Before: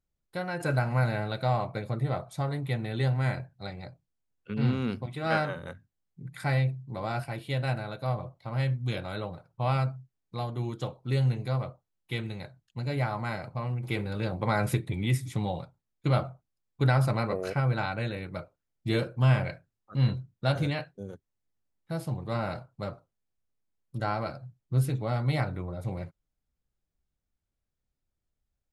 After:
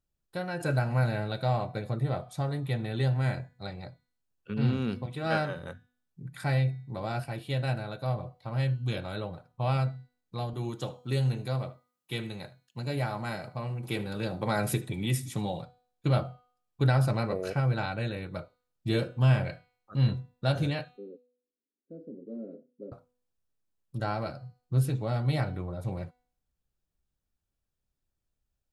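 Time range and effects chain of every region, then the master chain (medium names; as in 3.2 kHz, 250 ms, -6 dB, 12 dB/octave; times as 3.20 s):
10.53–15.62 s: high-pass 120 Hz + treble shelf 6.2 kHz +7 dB + delay 76 ms -19 dB
20.97–22.92 s: elliptic band-pass 210–490 Hz + comb 7.4 ms, depth 55%
whole clip: band-stop 2.1 kHz, Q 8.9; de-hum 247 Hz, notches 34; dynamic bell 1.1 kHz, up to -4 dB, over -43 dBFS, Q 1.7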